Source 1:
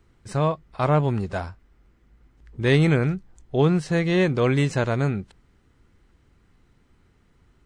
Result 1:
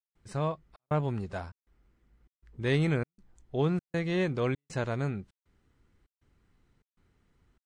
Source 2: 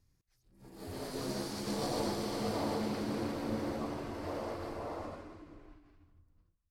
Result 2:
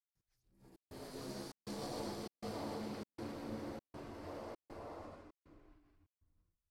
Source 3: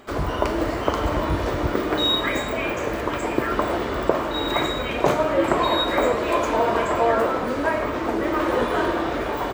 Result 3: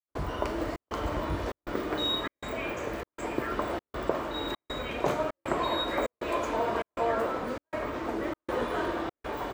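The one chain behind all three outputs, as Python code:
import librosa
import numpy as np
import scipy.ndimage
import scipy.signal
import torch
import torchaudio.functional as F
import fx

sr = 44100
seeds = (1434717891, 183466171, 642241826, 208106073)

y = fx.step_gate(x, sr, bpm=198, pattern='..xxxxxxxx', floor_db=-60.0, edge_ms=4.5)
y = F.gain(torch.from_numpy(y), -8.5).numpy()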